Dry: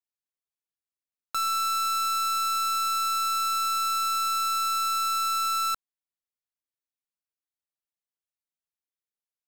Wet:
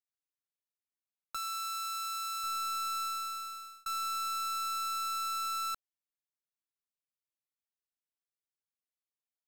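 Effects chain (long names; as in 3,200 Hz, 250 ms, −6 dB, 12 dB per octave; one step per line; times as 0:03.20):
0:01.36–0:02.44: high-pass filter 1,300 Hz 6 dB per octave
0:03.02–0:03.86: fade out
level −8.5 dB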